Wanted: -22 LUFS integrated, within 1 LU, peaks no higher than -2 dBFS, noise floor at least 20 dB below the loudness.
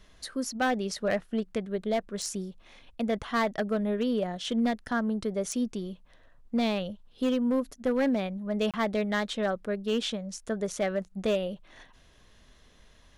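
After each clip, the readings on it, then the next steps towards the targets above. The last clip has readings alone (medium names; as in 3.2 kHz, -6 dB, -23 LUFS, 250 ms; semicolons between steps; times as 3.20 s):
clipped samples 0.7%; clipping level -20.5 dBFS; dropouts 1; longest dropout 27 ms; loudness -30.0 LUFS; peak level -20.5 dBFS; loudness target -22.0 LUFS
-> clip repair -20.5 dBFS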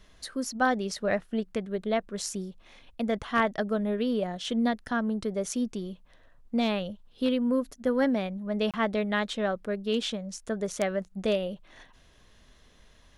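clipped samples 0.0%; dropouts 1; longest dropout 27 ms
-> interpolate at 8.71 s, 27 ms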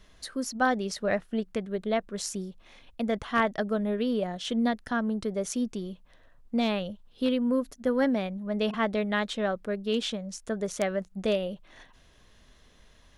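dropouts 0; loudness -29.5 LUFS; peak level -11.5 dBFS; loudness target -22.0 LUFS
-> trim +7.5 dB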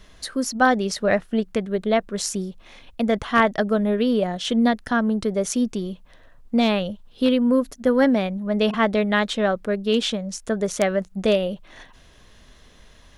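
loudness -22.0 LUFS; peak level -4.0 dBFS; noise floor -51 dBFS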